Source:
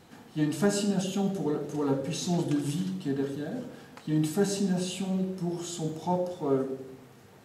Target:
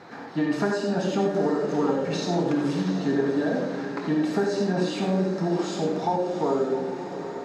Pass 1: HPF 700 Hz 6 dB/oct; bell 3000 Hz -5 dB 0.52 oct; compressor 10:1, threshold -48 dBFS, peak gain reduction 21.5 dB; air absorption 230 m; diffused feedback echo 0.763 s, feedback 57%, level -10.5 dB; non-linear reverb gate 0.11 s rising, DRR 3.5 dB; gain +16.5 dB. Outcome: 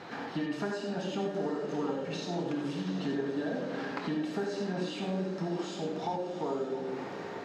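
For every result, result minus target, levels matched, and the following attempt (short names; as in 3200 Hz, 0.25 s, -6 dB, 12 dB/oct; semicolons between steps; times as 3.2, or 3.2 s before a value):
compressor: peak gain reduction +9.5 dB; 4000 Hz band +3.5 dB
HPF 700 Hz 6 dB/oct; bell 3000 Hz -5 dB 0.52 oct; compressor 10:1, threshold -37.5 dBFS, peak gain reduction 12 dB; air absorption 230 m; diffused feedback echo 0.763 s, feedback 57%, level -10.5 dB; non-linear reverb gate 0.11 s rising, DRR 3.5 dB; gain +16.5 dB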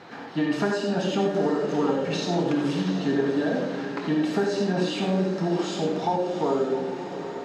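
4000 Hz band +3.0 dB
HPF 700 Hz 6 dB/oct; bell 3000 Hz -12.5 dB 0.52 oct; compressor 10:1, threshold -37.5 dBFS, peak gain reduction 12 dB; air absorption 230 m; diffused feedback echo 0.763 s, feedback 57%, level -10.5 dB; non-linear reverb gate 0.11 s rising, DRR 3.5 dB; gain +16.5 dB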